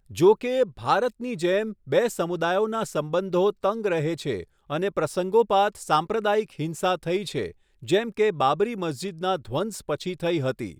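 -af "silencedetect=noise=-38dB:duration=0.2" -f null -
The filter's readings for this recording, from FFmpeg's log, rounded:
silence_start: 4.43
silence_end: 4.70 | silence_duration: 0.26
silence_start: 7.51
silence_end: 7.83 | silence_duration: 0.31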